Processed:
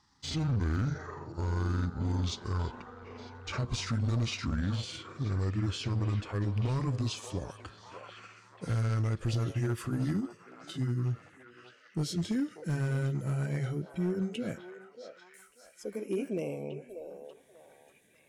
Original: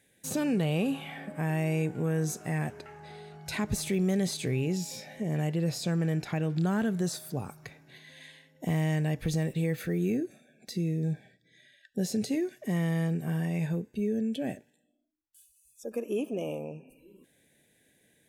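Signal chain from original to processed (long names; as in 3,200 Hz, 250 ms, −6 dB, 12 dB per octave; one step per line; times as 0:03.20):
pitch glide at a constant tempo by −11.5 semitones ending unshifted
hard clipping −25 dBFS, distortion −17 dB
echo through a band-pass that steps 589 ms, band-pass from 620 Hz, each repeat 0.7 octaves, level −5 dB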